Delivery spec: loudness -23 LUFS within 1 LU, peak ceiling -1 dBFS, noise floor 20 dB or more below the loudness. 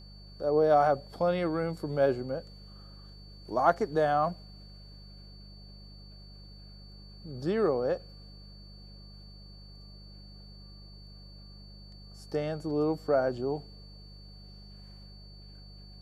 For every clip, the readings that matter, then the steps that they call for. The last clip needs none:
hum 50 Hz; highest harmonic 200 Hz; hum level -47 dBFS; steady tone 4.5 kHz; tone level -54 dBFS; loudness -29.0 LUFS; peak level -11.0 dBFS; loudness target -23.0 LUFS
-> de-hum 50 Hz, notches 4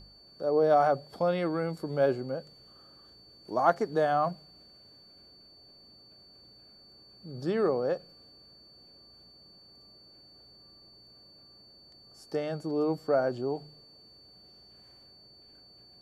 hum not found; steady tone 4.5 kHz; tone level -54 dBFS
-> band-stop 4.5 kHz, Q 30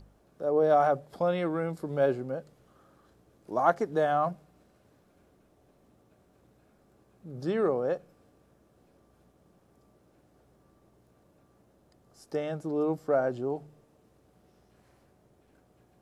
steady tone not found; loudness -29.0 LUFS; peak level -11.0 dBFS; loudness target -23.0 LUFS
-> trim +6 dB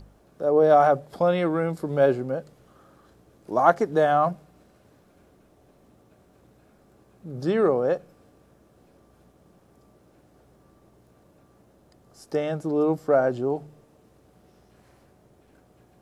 loudness -23.0 LUFS; peak level -5.0 dBFS; noise floor -59 dBFS

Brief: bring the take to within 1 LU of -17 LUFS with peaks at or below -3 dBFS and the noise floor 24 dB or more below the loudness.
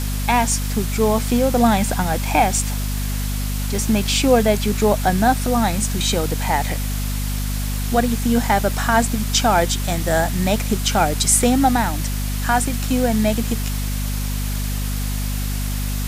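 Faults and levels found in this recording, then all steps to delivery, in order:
hum 50 Hz; highest harmonic 250 Hz; hum level -21 dBFS; noise floor -23 dBFS; noise floor target -44 dBFS; loudness -19.5 LUFS; peak level -2.5 dBFS; loudness target -17.0 LUFS
-> hum notches 50/100/150/200/250 Hz; noise print and reduce 21 dB; trim +2.5 dB; peak limiter -3 dBFS

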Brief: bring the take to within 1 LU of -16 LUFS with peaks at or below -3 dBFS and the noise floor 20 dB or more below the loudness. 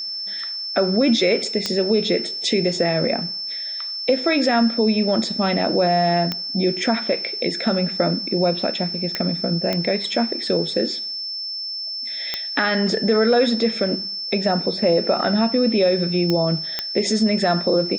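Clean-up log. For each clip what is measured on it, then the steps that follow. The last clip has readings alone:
clicks found 7; steady tone 5.3 kHz; tone level -26 dBFS; loudness -20.5 LUFS; peak level -3.0 dBFS; loudness target -16.0 LUFS
-> de-click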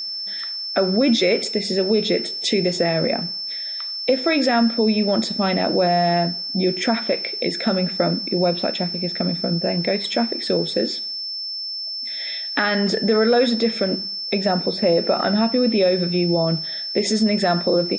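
clicks found 0; steady tone 5.3 kHz; tone level -26 dBFS
-> band-stop 5.3 kHz, Q 30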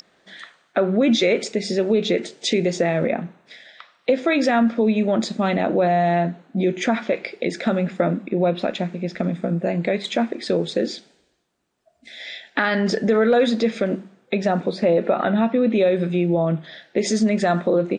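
steady tone not found; loudness -21.0 LUFS; peak level -4.0 dBFS; loudness target -16.0 LUFS
-> trim +5 dB; peak limiter -3 dBFS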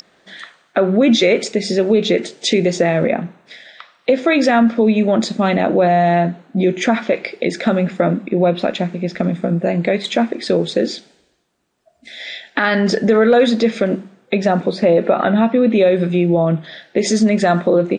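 loudness -16.0 LUFS; peak level -3.0 dBFS; noise floor -58 dBFS

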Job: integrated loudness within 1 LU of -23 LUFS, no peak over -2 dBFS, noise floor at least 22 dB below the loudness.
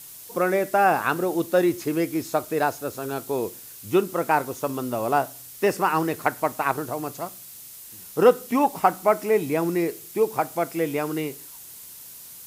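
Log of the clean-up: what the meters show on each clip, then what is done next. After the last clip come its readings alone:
noise floor -43 dBFS; noise floor target -46 dBFS; loudness -24.0 LUFS; peak level -4.0 dBFS; loudness target -23.0 LUFS
-> noise print and reduce 6 dB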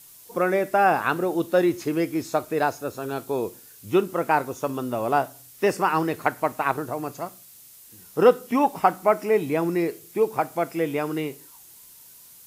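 noise floor -49 dBFS; loudness -24.5 LUFS; peak level -4.0 dBFS; loudness target -23.0 LUFS
-> trim +1.5 dB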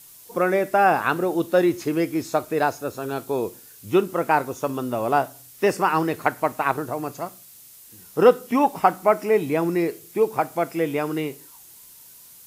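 loudness -23.0 LUFS; peak level -2.5 dBFS; noise floor -47 dBFS

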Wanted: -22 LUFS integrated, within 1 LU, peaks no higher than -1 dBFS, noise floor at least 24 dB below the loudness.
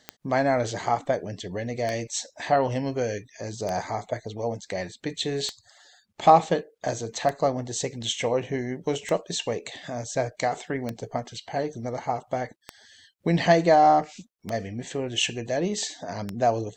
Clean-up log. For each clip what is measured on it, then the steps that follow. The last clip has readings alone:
clicks found 10; loudness -26.5 LUFS; peak level -4.0 dBFS; loudness target -22.0 LUFS
-> de-click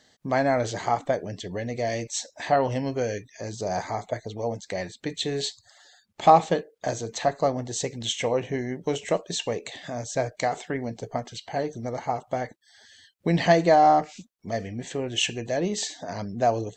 clicks found 0; loudness -26.5 LUFS; peak level -4.0 dBFS; loudness target -22.0 LUFS
-> trim +4.5 dB; peak limiter -1 dBFS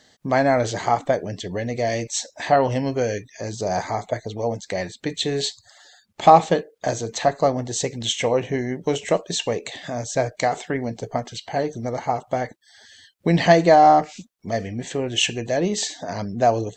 loudness -22.0 LUFS; peak level -1.0 dBFS; noise floor -61 dBFS

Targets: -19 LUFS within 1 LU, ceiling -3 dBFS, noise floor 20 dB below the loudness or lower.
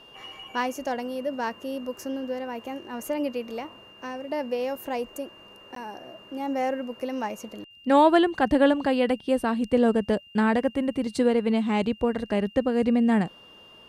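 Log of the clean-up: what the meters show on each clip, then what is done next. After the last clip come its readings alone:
dropouts 1; longest dropout 13 ms; steady tone 2.8 kHz; tone level -49 dBFS; loudness -25.5 LUFS; peak level -7.0 dBFS; loudness target -19.0 LUFS
-> interpolate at 5.75 s, 13 ms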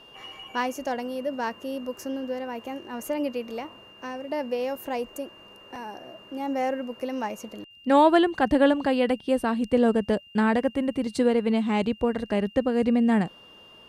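dropouts 0; steady tone 2.8 kHz; tone level -49 dBFS
-> band-stop 2.8 kHz, Q 30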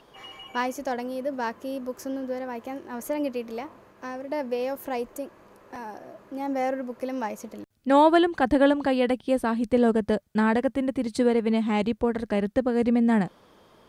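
steady tone not found; loudness -25.5 LUFS; peak level -7.0 dBFS; loudness target -19.0 LUFS
-> trim +6.5 dB; peak limiter -3 dBFS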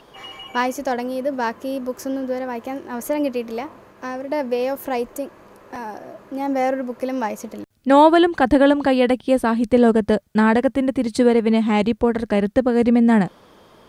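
loudness -19.5 LUFS; peak level -3.0 dBFS; noise floor -50 dBFS

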